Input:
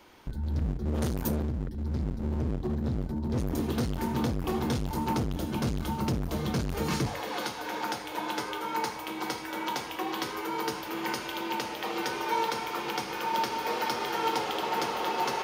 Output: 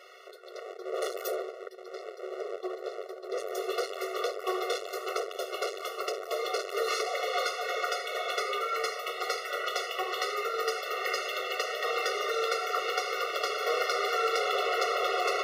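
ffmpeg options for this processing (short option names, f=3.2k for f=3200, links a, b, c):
-filter_complex "[0:a]asplit=2[a][b];[b]highpass=f=720:p=1,volume=11dB,asoftclip=type=tanh:threshold=-17.5dB[c];[a][c]amix=inputs=2:normalize=0,lowpass=f=3.7k:p=1,volume=-6dB,afftfilt=real='re*eq(mod(floor(b*sr/1024/370),2),1)':imag='im*eq(mod(floor(b*sr/1024/370),2),1)':win_size=1024:overlap=0.75,volume=4dB"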